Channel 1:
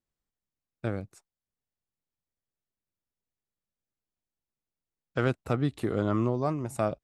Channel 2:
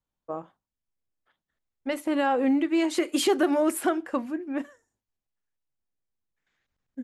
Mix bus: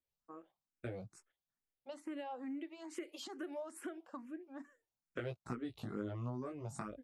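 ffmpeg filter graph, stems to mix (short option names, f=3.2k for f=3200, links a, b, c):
-filter_complex "[0:a]acompressor=threshold=-30dB:ratio=10,flanger=delay=16:depth=3.8:speed=1.1,volume=-1dB[a];[1:a]acompressor=threshold=-26dB:ratio=6,highpass=190,highshelf=f=9.8k:g=-4.5,volume=-12.5dB[b];[a][b]amix=inputs=2:normalize=0,asplit=2[c][d];[d]afreqshift=2.3[e];[c][e]amix=inputs=2:normalize=1"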